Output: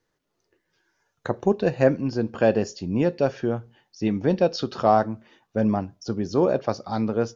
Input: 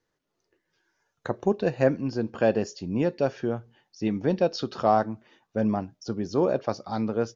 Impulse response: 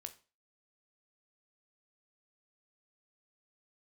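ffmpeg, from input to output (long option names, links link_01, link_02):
-filter_complex "[0:a]asplit=2[link_01][link_02];[1:a]atrim=start_sample=2205,lowshelf=frequency=140:gain=10[link_03];[link_02][link_03]afir=irnorm=-1:irlink=0,volume=-8dB[link_04];[link_01][link_04]amix=inputs=2:normalize=0,volume=1dB"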